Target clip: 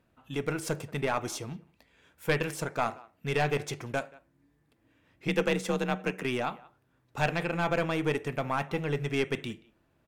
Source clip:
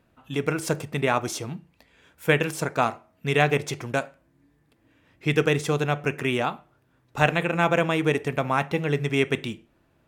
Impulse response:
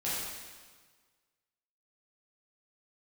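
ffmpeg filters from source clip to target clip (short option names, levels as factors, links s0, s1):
-filter_complex "[0:a]asplit=2[s0][s1];[s1]adelay=180,highpass=300,lowpass=3400,asoftclip=type=hard:threshold=0.282,volume=0.0708[s2];[s0][s2]amix=inputs=2:normalize=0,asplit=3[s3][s4][s5];[s3]afade=t=out:st=5.27:d=0.02[s6];[s4]afreqshift=38,afade=t=in:st=5.27:d=0.02,afade=t=out:st=6.23:d=0.02[s7];[s5]afade=t=in:st=6.23:d=0.02[s8];[s6][s7][s8]amix=inputs=3:normalize=0,aeval=exprs='(tanh(3.55*val(0)+0.45)-tanh(0.45))/3.55':c=same,volume=0.668"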